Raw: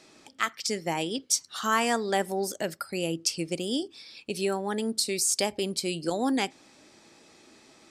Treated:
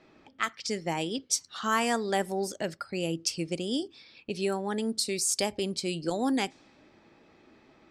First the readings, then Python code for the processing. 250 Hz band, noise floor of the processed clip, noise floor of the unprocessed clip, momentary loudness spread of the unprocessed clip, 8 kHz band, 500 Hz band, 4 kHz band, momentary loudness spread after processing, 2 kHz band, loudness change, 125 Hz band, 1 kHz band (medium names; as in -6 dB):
-0.5 dB, -61 dBFS, -57 dBFS, 7 LU, -2.5 dB, -1.5 dB, -2.5 dB, 7 LU, -2.0 dB, -2.0 dB, +0.5 dB, -2.0 dB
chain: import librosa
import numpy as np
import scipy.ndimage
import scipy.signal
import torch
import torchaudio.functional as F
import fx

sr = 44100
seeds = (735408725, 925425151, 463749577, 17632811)

y = fx.low_shelf(x, sr, hz=110.0, db=8.5)
y = fx.env_lowpass(y, sr, base_hz=2300.0, full_db=-22.0)
y = y * librosa.db_to_amplitude(-2.0)